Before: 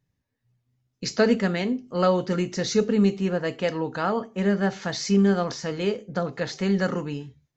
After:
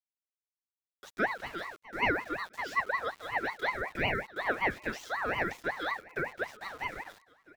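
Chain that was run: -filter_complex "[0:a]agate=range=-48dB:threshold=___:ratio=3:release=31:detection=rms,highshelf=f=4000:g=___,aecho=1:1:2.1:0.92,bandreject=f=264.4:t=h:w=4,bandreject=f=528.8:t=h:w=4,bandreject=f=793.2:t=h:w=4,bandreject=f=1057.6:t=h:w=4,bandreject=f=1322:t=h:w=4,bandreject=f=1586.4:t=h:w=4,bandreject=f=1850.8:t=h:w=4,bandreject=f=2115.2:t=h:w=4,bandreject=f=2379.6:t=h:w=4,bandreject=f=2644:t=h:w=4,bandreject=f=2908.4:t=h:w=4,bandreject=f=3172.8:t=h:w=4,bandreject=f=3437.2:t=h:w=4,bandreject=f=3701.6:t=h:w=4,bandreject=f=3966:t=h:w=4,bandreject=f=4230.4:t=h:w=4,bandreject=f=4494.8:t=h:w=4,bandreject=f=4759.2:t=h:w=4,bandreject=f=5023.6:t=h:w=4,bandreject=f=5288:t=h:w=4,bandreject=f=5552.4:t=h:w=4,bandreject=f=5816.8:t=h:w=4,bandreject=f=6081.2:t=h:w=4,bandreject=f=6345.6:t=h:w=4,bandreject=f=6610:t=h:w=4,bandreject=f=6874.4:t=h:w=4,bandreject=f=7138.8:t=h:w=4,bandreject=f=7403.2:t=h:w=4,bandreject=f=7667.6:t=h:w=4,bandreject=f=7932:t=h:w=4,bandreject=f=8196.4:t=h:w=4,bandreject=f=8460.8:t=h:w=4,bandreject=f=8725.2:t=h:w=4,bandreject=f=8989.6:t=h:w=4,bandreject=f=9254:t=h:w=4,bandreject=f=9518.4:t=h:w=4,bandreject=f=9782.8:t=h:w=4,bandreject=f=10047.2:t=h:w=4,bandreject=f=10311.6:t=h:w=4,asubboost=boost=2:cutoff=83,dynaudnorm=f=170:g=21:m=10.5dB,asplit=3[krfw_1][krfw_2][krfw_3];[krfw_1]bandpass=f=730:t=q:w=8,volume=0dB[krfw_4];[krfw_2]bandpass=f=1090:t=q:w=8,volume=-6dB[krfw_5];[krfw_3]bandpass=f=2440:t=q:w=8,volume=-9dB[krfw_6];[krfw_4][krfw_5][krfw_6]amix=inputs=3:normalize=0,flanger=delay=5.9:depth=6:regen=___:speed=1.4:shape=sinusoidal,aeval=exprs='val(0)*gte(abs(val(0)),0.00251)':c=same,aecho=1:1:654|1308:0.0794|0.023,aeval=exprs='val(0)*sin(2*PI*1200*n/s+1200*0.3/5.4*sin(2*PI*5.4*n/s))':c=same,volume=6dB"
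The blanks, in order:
-39dB, -3, 38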